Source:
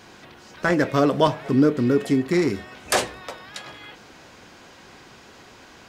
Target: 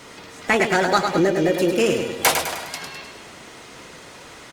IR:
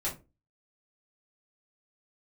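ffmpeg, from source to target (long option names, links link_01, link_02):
-filter_complex "[0:a]aecho=1:1:134|268|402|536|670|804:0.473|0.237|0.118|0.0591|0.0296|0.0148,asetrate=57330,aresample=44100,acrossover=split=1300[link_01][link_02];[link_01]alimiter=limit=-15dB:level=0:latency=1:release=444[link_03];[link_03][link_02]amix=inputs=2:normalize=0,volume=4.5dB" -ar 48000 -c:a libopus -b:a 48k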